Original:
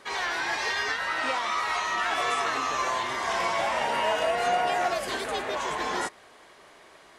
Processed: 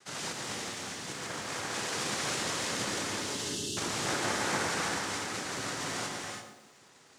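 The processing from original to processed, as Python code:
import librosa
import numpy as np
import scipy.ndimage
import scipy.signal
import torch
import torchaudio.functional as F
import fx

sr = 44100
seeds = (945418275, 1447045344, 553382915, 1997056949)

y = fx.spec_erase(x, sr, start_s=0.32, length_s=1.15, low_hz=1300.0, high_hz=3600.0)
y = fx.ring_mod(y, sr, carrier_hz=430.0, at=(1.27, 1.74))
y = np.abs(y)
y = fx.noise_vocoder(y, sr, seeds[0], bands=3)
y = fx.brickwall_bandstop(y, sr, low_hz=460.0, high_hz=2600.0, at=(3.22, 3.77))
y = fx.echo_banded(y, sr, ms=140, feedback_pct=49, hz=350.0, wet_db=-4.5)
y = fx.rev_gated(y, sr, seeds[1], gate_ms=360, shape='rising', drr_db=2.0)
y = fx.echo_crushed(y, sr, ms=112, feedback_pct=35, bits=9, wet_db=-11.0)
y = F.gain(torch.from_numpy(y), -3.5).numpy()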